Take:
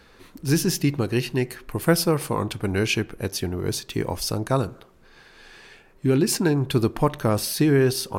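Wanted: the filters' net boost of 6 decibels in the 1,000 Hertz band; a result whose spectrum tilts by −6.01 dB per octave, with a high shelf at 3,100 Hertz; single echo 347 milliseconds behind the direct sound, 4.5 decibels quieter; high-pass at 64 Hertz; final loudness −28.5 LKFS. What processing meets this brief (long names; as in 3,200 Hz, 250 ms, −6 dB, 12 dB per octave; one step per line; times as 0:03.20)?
high-pass filter 64 Hz
parametric band 1,000 Hz +8 dB
high-shelf EQ 3,100 Hz −7.5 dB
single-tap delay 347 ms −4.5 dB
level −6.5 dB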